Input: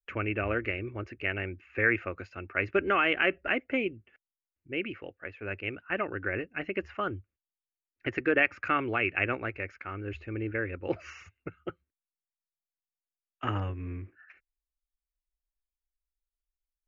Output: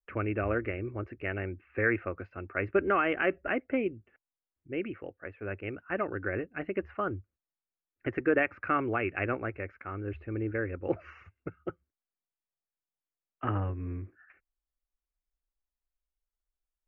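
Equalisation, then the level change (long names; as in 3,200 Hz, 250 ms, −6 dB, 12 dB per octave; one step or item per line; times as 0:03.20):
low-pass filter 1,500 Hz 12 dB per octave
notch filter 900 Hz, Q 23
+1.0 dB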